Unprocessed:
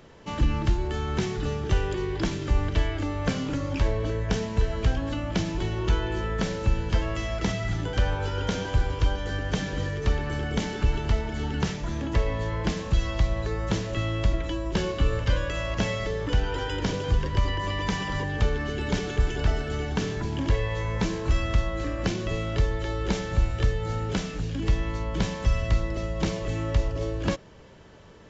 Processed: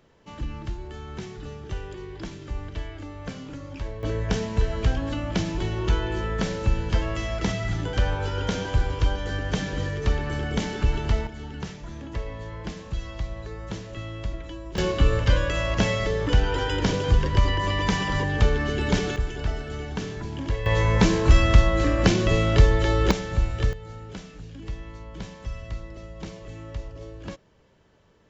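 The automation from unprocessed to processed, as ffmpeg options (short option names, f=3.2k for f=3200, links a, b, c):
-af "asetnsamples=n=441:p=0,asendcmd='4.03 volume volume 1dB;11.27 volume volume -7.5dB;14.78 volume volume 4dB;19.16 volume volume -3.5dB;20.66 volume volume 8dB;23.11 volume volume 0dB;23.73 volume volume -10.5dB',volume=-9dB"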